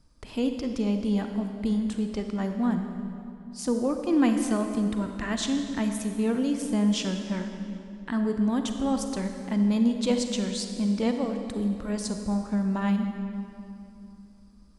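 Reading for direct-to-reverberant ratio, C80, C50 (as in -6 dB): 5.5 dB, 7.0 dB, 6.0 dB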